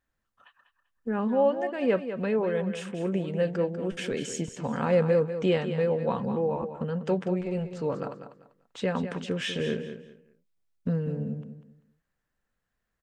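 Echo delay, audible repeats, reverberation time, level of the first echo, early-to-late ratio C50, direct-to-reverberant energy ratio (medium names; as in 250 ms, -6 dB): 195 ms, 3, no reverb, -10.0 dB, no reverb, no reverb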